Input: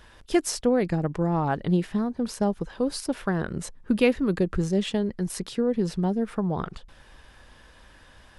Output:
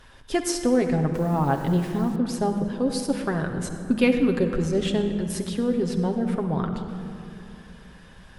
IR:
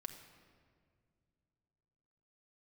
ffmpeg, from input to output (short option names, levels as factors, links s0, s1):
-filter_complex "[1:a]atrim=start_sample=2205,asetrate=29106,aresample=44100[s0];[0:a][s0]afir=irnorm=-1:irlink=0,asettb=1/sr,asplit=3[s1][s2][s3];[s1]atrim=end=1.144[s4];[s2]atrim=start=1.14:end=2.16,asetpts=PTS-STARTPTS,afade=t=in:d=0.004:c=qsin,afade=t=out:st=1.016:d=0.004:c=qsin,acrusher=bits=7:mix=0:aa=0.5[s5];[s3]atrim=start=2.156[s6];[s4][s5]acrossfade=d=0.004:c1=hsin:c2=qsin[s7];[s7][s6]acrossfade=d=0.004:c1=qsin:c2=hsin,volume=1.41"